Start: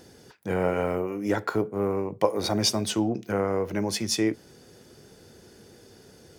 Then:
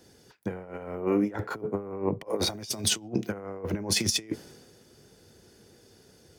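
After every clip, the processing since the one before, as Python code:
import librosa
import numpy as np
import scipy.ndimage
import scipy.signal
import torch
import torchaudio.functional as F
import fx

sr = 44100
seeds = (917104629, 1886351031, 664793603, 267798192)

y = fx.over_compress(x, sr, threshold_db=-31.0, ratio=-0.5)
y = fx.band_widen(y, sr, depth_pct=70)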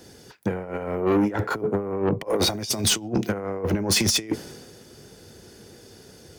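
y = 10.0 ** (-24.5 / 20.0) * np.tanh(x / 10.0 ** (-24.5 / 20.0))
y = F.gain(torch.from_numpy(y), 9.0).numpy()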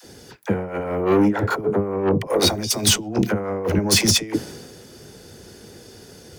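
y = fx.dispersion(x, sr, late='lows', ms=44.0, hz=480.0)
y = F.gain(torch.from_numpy(y), 4.0).numpy()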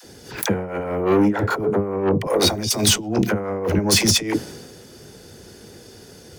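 y = fx.pre_swell(x, sr, db_per_s=100.0)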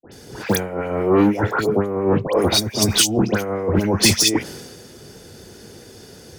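y = fx.dispersion(x, sr, late='highs', ms=122.0, hz=1500.0)
y = F.gain(torch.from_numpy(y), 1.5).numpy()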